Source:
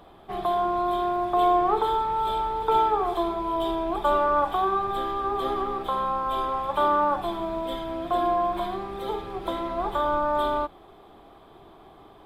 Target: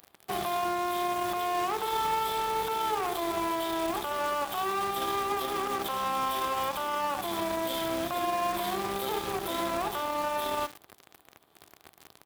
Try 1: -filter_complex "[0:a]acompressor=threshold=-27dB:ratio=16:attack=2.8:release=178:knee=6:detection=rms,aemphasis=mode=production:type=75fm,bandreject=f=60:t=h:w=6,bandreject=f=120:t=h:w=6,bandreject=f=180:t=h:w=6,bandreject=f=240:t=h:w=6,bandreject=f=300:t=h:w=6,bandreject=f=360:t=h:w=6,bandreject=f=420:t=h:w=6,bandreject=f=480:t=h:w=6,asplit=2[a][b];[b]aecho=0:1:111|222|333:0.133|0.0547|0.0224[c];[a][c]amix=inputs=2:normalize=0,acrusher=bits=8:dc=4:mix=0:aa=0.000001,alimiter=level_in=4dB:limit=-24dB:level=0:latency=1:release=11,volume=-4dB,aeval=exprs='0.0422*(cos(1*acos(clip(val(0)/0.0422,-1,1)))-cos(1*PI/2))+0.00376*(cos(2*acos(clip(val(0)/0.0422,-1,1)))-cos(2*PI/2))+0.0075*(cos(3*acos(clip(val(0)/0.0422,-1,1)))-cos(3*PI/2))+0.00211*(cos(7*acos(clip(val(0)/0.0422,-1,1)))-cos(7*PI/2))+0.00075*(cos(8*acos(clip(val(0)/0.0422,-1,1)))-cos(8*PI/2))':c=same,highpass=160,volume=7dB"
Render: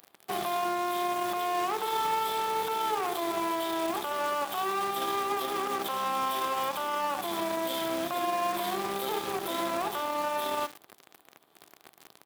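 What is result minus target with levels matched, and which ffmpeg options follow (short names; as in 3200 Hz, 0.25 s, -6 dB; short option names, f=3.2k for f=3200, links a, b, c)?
125 Hz band -4.0 dB
-filter_complex "[0:a]acompressor=threshold=-27dB:ratio=16:attack=2.8:release=178:knee=6:detection=rms,aemphasis=mode=production:type=75fm,bandreject=f=60:t=h:w=6,bandreject=f=120:t=h:w=6,bandreject=f=180:t=h:w=6,bandreject=f=240:t=h:w=6,bandreject=f=300:t=h:w=6,bandreject=f=360:t=h:w=6,bandreject=f=420:t=h:w=6,bandreject=f=480:t=h:w=6,asplit=2[a][b];[b]aecho=0:1:111|222|333:0.133|0.0547|0.0224[c];[a][c]amix=inputs=2:normalize=0,acrusher=bits=8:dc=4:mix=0:aa=0.000001,alimiter=level_in=4dB:limit=-24dB:level=0:latency=1:release=11,volume=-4dB,aeval=exprs='0.0422*(cos(1*acos(clip(val(0)/0.0422,-1,1)))-cos(1*PI/2))+0.00376*(cos(2*acos(clip(val(0)/0.0422,-1,1)))-cos(2*PI/2))+0.0075*(cos(3*acos(clip(val(0)/0.0422,-1,1)))-cos(3*PI/2))+0.00211*(cos(7*acos(clip(val(0)/0.0422,-1,1)))-cos(7*PI/2))+0.00075*(cos(8*acos(clip(val(0)/0.0422,-1,1)))-cos(8*PI/2))':c=same,highpass=70,volume=7dB"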